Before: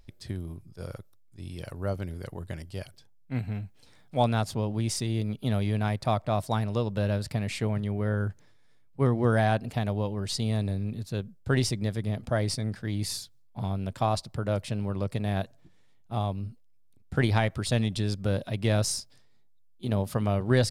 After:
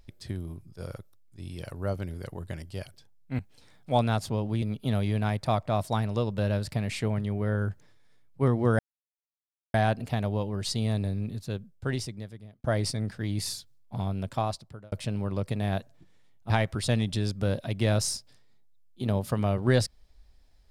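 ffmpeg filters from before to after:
-filter_complex "[0:a]asplit=7[s0][s1][s2][s3][s4][s5][s6];[s0]atrim=end=3.392[s7];[s1]atrim=start=3.638:end=4.872[s8];[s2]atrim=start=5.208:end=9.38,asetpts=PTS-STARTPTS,afade=t=out:st=4.168:d=0.004:c=hsin,apad=pad_dur=0.95[s9];[s3]atrim=start=9.38:end=12.28,asetpts=PTS-STARTPTS,afade=t=in:d=0.004:c=hsin,afade=t=out:st=1.55:d=1.35[s10];[s4]atrim=start=12.28:end=14.56,asetpts=PTS-STARTPTS,afade=t=in:d=0.004:c=hsin,afade=t=out:st=1.61:d=0.67[s11];[s5]atrim=start=14.56:end=16.142,asetpts=PTS-STARTPTS,afade=t=in:d=0.004:c=hsin[s12];[s6]atrim=start=17.328[s13];[s7][s8]acrossfade=d=0.004:c1=hsin:c2=hsin[s14];[s9][s10][s11][s12]concat=n=4:v=0:a=1[s15];[s14][s15]acrossfade=d=0.004:c1=hsin:c2=hsin[s16];[s16][s13]acrossfade=d=0.004:c1=hsin:c2=hsin"

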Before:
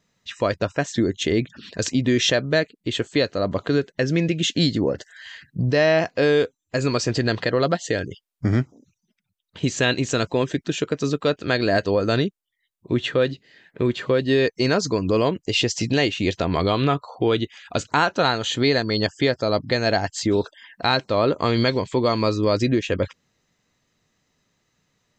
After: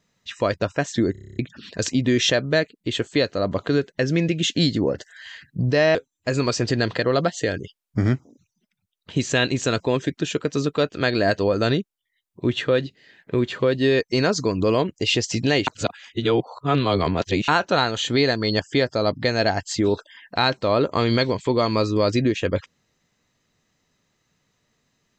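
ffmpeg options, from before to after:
-filter_complex "[0:a]asplit=13[s0][s1][s2][s3][s4][s5][s6][s7][s8][s9][s10][s11][s12];[s0]atrim=end=1.152[s13];[s1]atrim=start=1.118:end=1.152[s14];[s2]atrim=start=1.118:end=1.152[s15];[s3]atrim=start=1.118:end=1.152[s16];[s4]atrim=start=1.118:end=1.152[s17];[s5]atrim=start=1.118:end=1.152[s18];[s6]atrim=start=1.118:end=1.152[s19];[s7]atrim=start=1.118:end=1.152[s20];[s8]atrim=start=1.118:end=1.152[s21];[s9]atrim=start=1.388:end=5.952[s22];[s10]atrim=start=6.418:end=16.142[s23];[s11]atrim=start=16.138:end=17.952,asetpts=PTS-STARTPTS,areverse[s24];[s12]atrim=start=17.948[s25];[s13][s14]acrossfade=d=0.004:c1=hsin:c2=hsin[s26];[s26][s15]acrossfade=d=0.004:c1=hsin:c2=hsin[s27];[s27][s16]acrossfade=d=0.004:c1=hsin:c2=hsin[s28];[s28][s17]acrossfade=d=0.004:c1=hsin:c2=hsin[s29];[s29][s18]acrossfade=d=0.004:c1=hsin:c2=hsin[s30];[s30][s19]acrossfade=d=0.004:c1=hsin:c2=hsin[s31];[s31][s20]acrossfade=d=0.004:c1=hsin:c2=hsin[s32];[s32][s21]acrossfade=d=0.004:c1=hsin:c2=hsin[s33];[s33][s22]acrossfade=d=0.004:c1=hsin:c2=hsin[s34];[s34][s23]acrossfade=d=0.004:c1=hsin:c2=hsin[s35];[s35][s24]acrossfade=d=0.004:c1=hsin:c2=hsin[s36];[s36][s25]acrossfade=d=0.004:c1=hsin:c2=hsin"

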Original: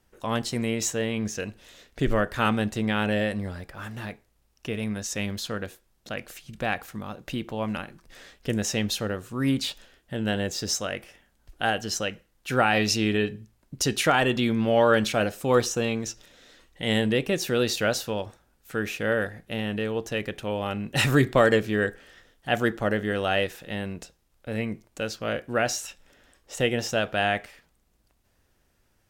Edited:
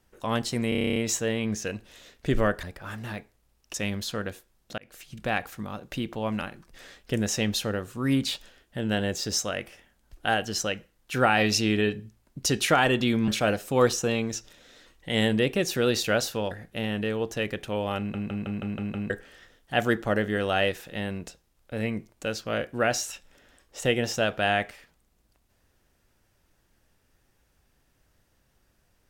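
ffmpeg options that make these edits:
-filter_complex "[0:a]asplit=22[s0][s1][s2][s3][s4][s5][s6][s7][s8][s9][s10][s11][s12][s13][s14][s15][s16][s17][s18][s19][s20][s21];[s0]atrim=end=0.722[s22];[s1]atrim=start=0.688:end=0.722[s23];[s2]atrim=start=0.688:end=0.722[s24];[s3]atrim=start=0.688:end=0.722[s25];[s4]atrim=start=0.688:end=0.722[s26];[s5]atrim=start=0.688:end=0.722[s27];[s6]atrim=start=0.688:end=0.722[s28];[s7]atrim=start=0.688:end=0.722[s29];[s8]atrim=start=0.688:end=0.722[s30];[s9]atrim=start=0.688:end=2.362[s31];[s10]atrim=start=3.558:end=4.672[s32];[s11]atrim=start=5.098:end=6.14,asetpts=PTS-STARTPTS,afade=t=out:st=1.038:d=0.004:c=hsin[s33];[s12]atrim=start=6.14:end=14.642,asetpts=PTS-STARTPTS,afade=t=in:d=0.32[s34];[s13]atrim=start=15.008:end=18.242[s35];[s14]atrim=start=19.258:end=20.892[s36];[s15]atrim=start=20.728:end=20.892[s37];[s16]atrim=start=20.728:end=20.892[s38];[s17]atrim=start=20.728:end=20.892[s39];[s18]atrim=start=20.728:end=20.892[s40];[s19]atrim=start=20.728:end=20.892[s41];[s20]atrim=start=20.728:end=20.892[s42];[s21]atrim=start=21.848[s43];[s22][s23]acrossfade=d=0.004:c1=hsin:c2=hsin[s44];[s44][s24]acrossfade=d=0.004:c1=hsin:c2=hsin[s45];[s45][s25]acrossfade=d=0.004:c1=hsin:c2=hsin[s46];[s46][s26]acrossfade=d=0.004:c1=hsin:c2=hsin[s47];[s47][s27]acrossfade=d=0.004:c1=hsin:c2=hsin[s48];[s48][s28]acrossfade=d=0.004:c1=hsin:c2=hsin[s49];[s49][s29]acrossfade=d=0.004:c1=hsin:c2=hsin[s50];[s50][s30]acrossfade=d=0.004:c1=hsin:c2=hsin[s51];[s51][s31]acrossfade=d=0.004:c1=hsin:c2=hsin[s52];[s52][s32]acrossfade=d=0.004:c1=hsin:c2=hsin[s53];[s33][s34]concat=n=2:v=0:a=1[s54];[s53][s54]acrossfade=d=0.004:c1=hsin:c2=hsin[s55];[s55][s35]acrossfade=d=0.004:c1=hsin:c2=hsin[s56];[s56][s36]acrossfade=d=0.004:c1=hsin:c2=hsin[s57];[s57][s37]acrossfade=d=0.004:c1=hsin:c2=hsin[s58];[s58][s38]acrossfade=d=0.004:c1=hsin:c2=hsin[s59];[s59][s39]acrossfade=d=0.004:c1=hsin:c2=hsin[s60];[s60][s40]acrossfade=d=0.004:c1=hsin:c2=hsin[s61];[s61][s41]acrossfade=d=0.004:c1=hsin:c2=hsin[s62];[s62][s42]acrossfade=d=0.004:c1=hsin:c2=hsin[s63];[s63][s43]acrossfade=d=0.004:c1=hsin:c2=hsin"

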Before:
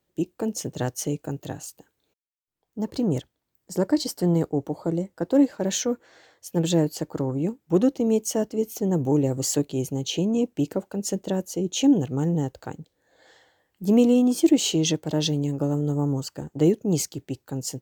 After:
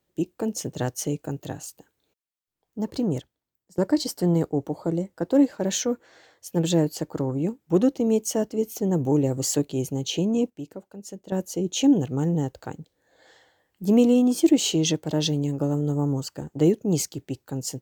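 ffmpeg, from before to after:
-filter_complex "[0:a]asplit=4[s0][s1][s2][s3];[s0]atrim=end=3.78,asetpts=PTS-STARTPTS,afade=t=out:st=2.95:d=0.83:silence=0.0891251[s4];[s1]atrim=start=3.78:end=10.502,asetpts=PTS-STARTPTS,afade=t=in:d=0.004:c=hsin:silence=0.0891251[s5];[s2]atrim=start=10.498:end=11.322,asetpts=PTS-STARTPTS,volume=0.266[s6];[s3]atrim=start=11.318[s7];[s4][s5]concat=n=2:v=0:a=1[s8];[s8][s6]acrossfade=d=0.004:c1=hsin:c2=hsin[s9];[s9][s7]acrossfade=d=0.004:c1=hsin:c2=hsin"

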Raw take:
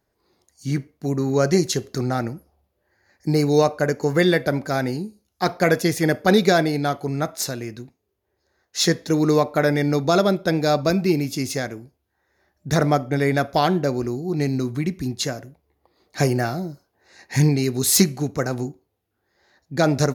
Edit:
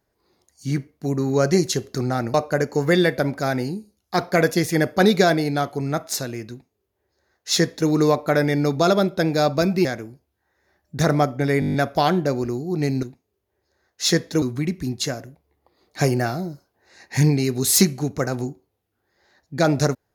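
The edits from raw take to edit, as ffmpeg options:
-filter_complex "[0:a]asplit=12[s0][s1][s2][s3][s4][s5][s6][s7][s8][s9][s10][s11];[s0]atrim=end=2.342[s12];[s1]atrim=start=3.618:end=11.132[s13];[s2]atrim=start=11.568:end=13.342[s14];[s3]atrim=start=13.318:end=13.342[s15];[s4]atrim=start=13.318:end=13.342[s16];[s5]atrim=start=13.318:end=13.342[s17];[s6]atrim=start=13.318:end=13.342[s18];[s7]atrim=start=13.318:end=13.342[s19];[s8]atrim=start=13.318:end=13.342[s20];[s9]atrim=start=13.318:end=14.612[s21];[s10]atrim=start=7.778:end=9.172[s22];[s11]atrim=start=14.608[s23];[s12][s13]acrossfade=d=0.004:c1=hsin:c2=hsin[s24];[s24][s14]acrossfade=d=0.004:c1=hsin:c2=hsin[s25];[s25][s15]acrossfade=d=0.004:c1=hsin:c2=hsin[s26];[s26][s16]acrossfade=d=0.004:c1=hsin:c2=hsin[s27];[s27][s17]acrossfade=d=0.004:c1=hsin:c2=hsin[s28];[s28][s18]acrossfade=d=0.004:c1=hsin:c2=hsin[s29];[s29][s19]acrossfade=d=0.004:c1=hsin:c2=hsin[s30];[s30][s20]acrossfade=d=0.004:c1=hsin:c2=hsin[s31];[s31][s21]acrossfade=d=0.004:c1=hsin:c2=hsin[s32];[s32][s22]acrossfade=d=0.004:c1=hsin:c2=hsin[s33];[s33][s23]acrossfade=d=0.004:c1=hsin:c2=hsin"

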